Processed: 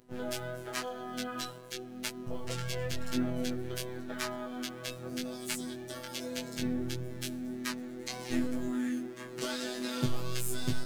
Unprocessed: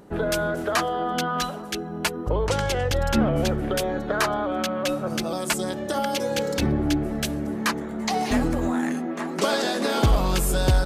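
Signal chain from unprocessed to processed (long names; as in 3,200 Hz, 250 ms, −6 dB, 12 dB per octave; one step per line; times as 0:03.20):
parametric band 840 Hz −11 dB 1.4 octaves
in parallel at −8 dB: bit reduction 7 bits
on the sum: phases set to zero 125 Hz
pitch-shifted copies added +5 semitones −11 dB, +12 semitones −16 dB
chorus effect 0.92 Hz, delay 19 ms, depth 3.2 ms
level −7 dB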